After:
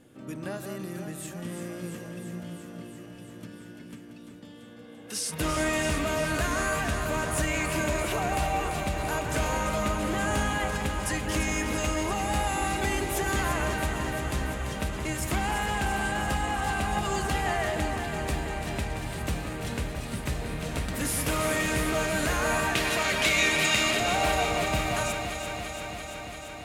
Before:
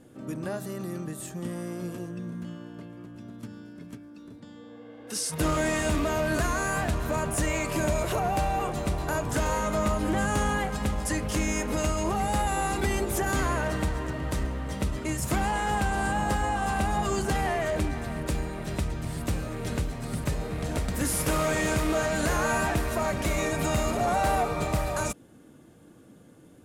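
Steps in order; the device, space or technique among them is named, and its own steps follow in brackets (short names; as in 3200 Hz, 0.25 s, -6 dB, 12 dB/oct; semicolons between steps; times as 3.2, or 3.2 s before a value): 22.75–24 weighting filter D; presence and air boost (bell 2700 Hz +6 dB 1.5 oct; high shelf 10000 Hz +4 dB); echo with dull and thin repeats by turns 0.17 s, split 2400 Hz, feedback 88%, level -7 dB; gain -3.5 dB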